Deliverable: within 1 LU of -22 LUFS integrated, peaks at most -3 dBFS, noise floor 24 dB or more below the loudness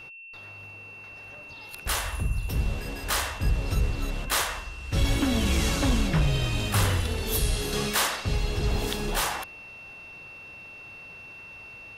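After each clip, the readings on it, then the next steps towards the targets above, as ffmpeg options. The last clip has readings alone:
steady tone 2.7 kHz; tone level -42 dBFS; loudness -27.0 LUFS; peak level -14.0 dBFS; loudness target -22.0 LUFS
-> -af "bandreject=f=2700:w=30"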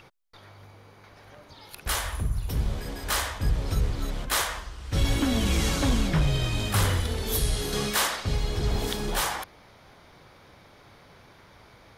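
steady tone not found; loudness -27.5 LUFS; peak level -14.0 dBFS; loudness target -22.0 LUFS
-> -af "volume=1.88"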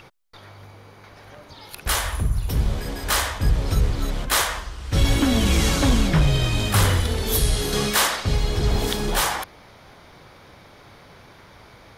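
loudness -22.0 LUFS; peak level -8.5 dBFS; noise floor -48 dBFS

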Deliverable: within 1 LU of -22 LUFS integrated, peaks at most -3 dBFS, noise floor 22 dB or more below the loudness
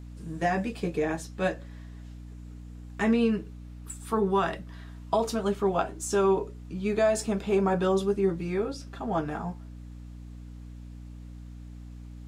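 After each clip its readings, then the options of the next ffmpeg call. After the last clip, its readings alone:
hum 60 Hz; highest harmonic 300 Hz; hum level -41 dBFS; loudness -28.0 LUFS; peak level -13.0 dBFS; loudness target -22.0 LUFS
-> -af "bandreject=f=60:t=h:w=6,bandreject=f=120:t=h:w=6,bandreject=f=180:t=h:w=6,bandreject=f=240:t=h:w=6,bandreject=f=300:t=h:w=6"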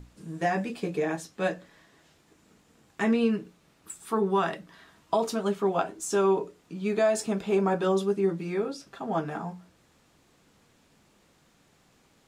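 hum not found; loudness -28.0 LUFS; peak level -13.5 dBFS; loudness target -22.0 LUFS
-> -af "volume=2"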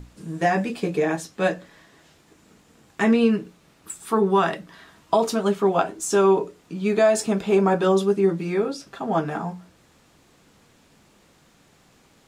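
loudness -22.0 LUFS; peak level -7.5 dBFS; noise floor -58 dBFS

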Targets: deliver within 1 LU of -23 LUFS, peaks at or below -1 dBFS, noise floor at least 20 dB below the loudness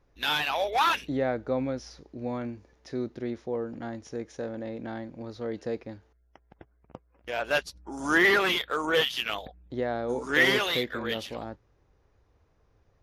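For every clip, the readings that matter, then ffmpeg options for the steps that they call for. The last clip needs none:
loudness -28.5 LUFS; peak level -12.5 dBFS; loudness target -23.0 LUFS
-> -af "volume=1.88"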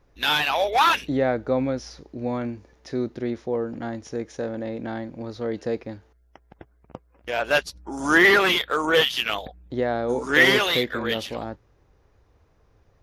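loudness -23.0 LUFS; peak level -7.0 dBFS; noise floor -61 dBFS

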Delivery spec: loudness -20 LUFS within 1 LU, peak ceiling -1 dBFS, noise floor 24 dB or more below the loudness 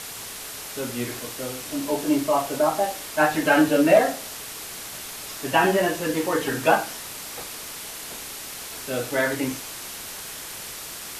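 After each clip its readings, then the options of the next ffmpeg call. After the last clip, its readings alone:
noise floor -37 dBFS; noise floor target -49 dBFS; loudness -25.0 LUFS; peak level -5.0 dBFS; loudness target -20.0 LUFS
-> -af "afftdn=nr=12:nf=-37"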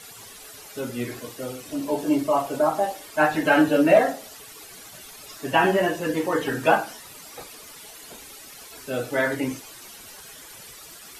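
noise floor -44 dBFS; noise floor target -47 dBFS
-> -af "afftdn=nr=6:nf=-44"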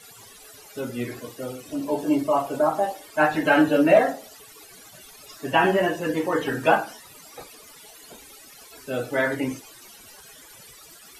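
noise floor -48 dBFS; loudness -23.0 LUFS; peak level -5.5 dBFS; loudness target -20.0 LUFS
-> -af "volume=1.41"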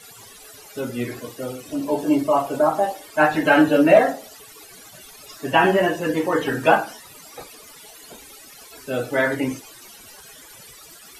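loudness -20.0 LUFS; peak level -2.5 dBFS; noise floor -45 dBFS

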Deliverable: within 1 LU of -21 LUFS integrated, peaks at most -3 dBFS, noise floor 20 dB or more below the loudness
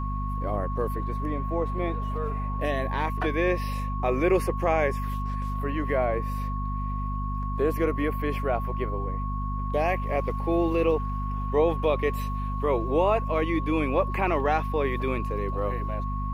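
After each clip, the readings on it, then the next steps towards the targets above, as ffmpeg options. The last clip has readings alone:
hum 50 Hz; highest harmonic 250 Hz; hum level -27 dBFS; steady tone 1.1 kHz; tone level -34 dBFS; loudness -27.5 LUFS; peak level -11.0 dBFS; loudness target -21.0 LUFS
-> -af "bandreject=f=50:t=h:w=6,bandreject=f=100:t=h:w=6,bandreject=f=150:t=h:w=6,bandreject=f=200:t=h:w=6,bandreject=f=250:t=h:w=6"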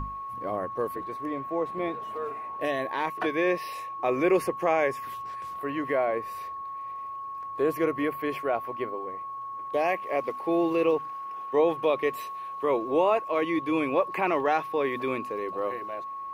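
hum not found; steady tone 1.1 kHz; tone level -34 dBFS
-> -af "bandreject=f=1100:w=30"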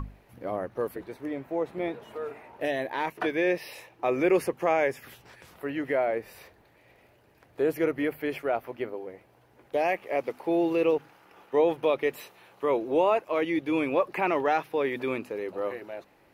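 steady tone not found; loudness -28.5 LUFS; peak level -12.5 dBFS; loudness target -21.0 LUFS
-> -af "volume=2.37"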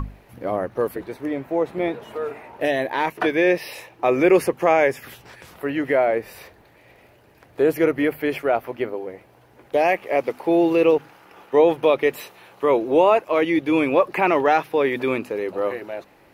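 loudness -21.0 LUFS; peak level -5.0 dBFS; noise floor -53 dBFS

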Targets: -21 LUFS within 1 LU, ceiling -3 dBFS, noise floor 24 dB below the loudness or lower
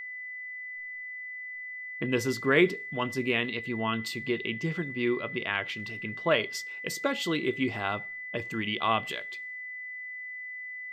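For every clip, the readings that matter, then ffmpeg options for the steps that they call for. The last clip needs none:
steady tone 2 kHz; tone level -37 dBFS; loudness -31.0 LUFS; peak level -10.0 dBFS; loudness target -21.0 LUFS
-> -af "bandreject=f=2000:w=30"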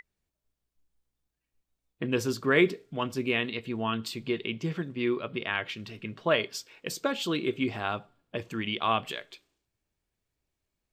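steady tone not found; loudness -30.5 LUFS; peak level -10.5 dBFS; loudness target -21.0 LUFS
-> -af "volume=2.99,alimiter=limit=0.708:level=0:latency=1"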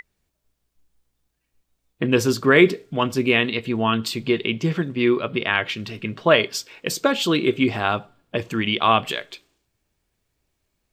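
loudness -21.0 LUFS; peak level -3.0 dBFS; noise floor -76 dBFS

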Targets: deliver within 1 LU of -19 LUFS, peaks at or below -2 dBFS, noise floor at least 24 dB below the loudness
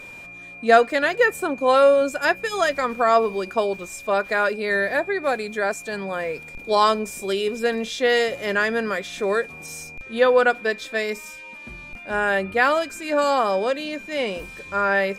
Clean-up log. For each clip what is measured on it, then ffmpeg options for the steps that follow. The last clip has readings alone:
steady tone 2.4 kHz; tone level -38 dBFS; loudness -21.5 LUFS; peak level -3.5 dBFS; loudness target -19.0 LUFS
-> -af "bandreject=f=2400:w=30"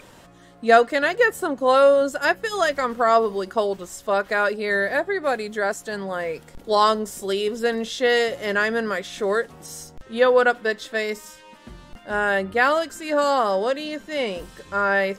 steady tone not found; loudness -21.5 LUFS; peak level -3.5 dBFS; loudness target -19.0 LUFS
-> -af "volume=1.33,alimiter=limit=0.794:level=0:latency=1"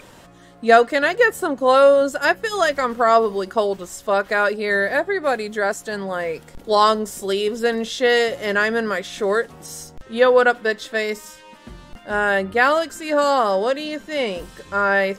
loudness -19.0 LUFS; peak level -2.0 dBFS; noise floor -46 dBFS

